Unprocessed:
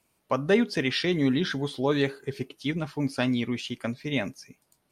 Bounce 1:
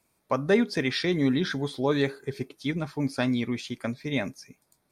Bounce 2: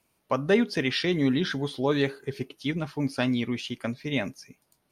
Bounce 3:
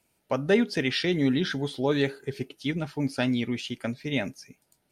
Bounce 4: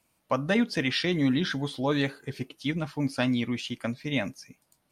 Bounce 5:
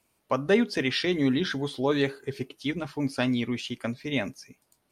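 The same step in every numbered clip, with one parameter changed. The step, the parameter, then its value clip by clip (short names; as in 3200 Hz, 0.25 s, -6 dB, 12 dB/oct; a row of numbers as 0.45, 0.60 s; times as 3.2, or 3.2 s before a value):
notch, frequency: 2900, 7700, 1100, 400, 160 Hz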